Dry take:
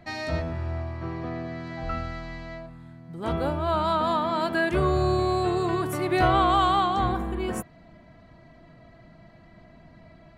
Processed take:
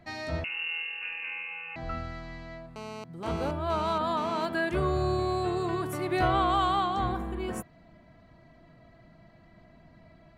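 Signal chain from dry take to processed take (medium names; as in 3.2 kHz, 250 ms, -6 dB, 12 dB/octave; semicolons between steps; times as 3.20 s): 0.44–1.76 s: frequency inversion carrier 2.8 kHz; 2.76–4.45 s: mobile phone buzz -36 dBFS; trim -4.5 dB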